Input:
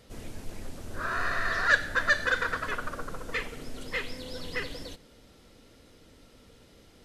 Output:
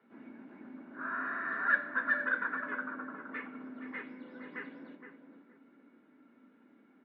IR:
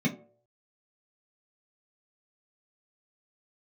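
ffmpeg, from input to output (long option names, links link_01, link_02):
-filter_complex "[0:a]highpass=frequency=280:width=0.5412,highpass=frequency=280:width=1.3066,equalizer=frequency=450:width_type=q:width=4:gain=-6,equalizer=frequency=690:width_type=q:width=4:gain=-4,equalizer=frequency=1400:width_type=q:width=4:gain=5,lowpass=frequency=2000:width=0.5412,lowpass=frequency=2000:width=1.3066,asplit=2[link_01][link_02];[link_02]adelay=468,lowpass=frequency=1200:poles=1,volume=-6.5dB,asplit=2[link_03][link_04];[link_04]adelay=468,lowpass=frequency=1200:poles=1,volume=0.26,asplit=2[link_05][link_06];[link_06]adelay=468,lowpass=frequency=1200:poles=1,volume=0.26[link_07];[link_01][link_03][link_05][link_07]amix=inputs=4:normalize=0,asplit=2[link_08][link_09];[1:a]atrim=start_sample=2205,highshelf=frequency=2900:gain=10[link_10];[link_09][link_10]afir=irnorm=-1:irlink=0,volume=-13dB[link_11];[link_08][link_11]amix=inputs=2:normalize=0,volume=-6.5dB"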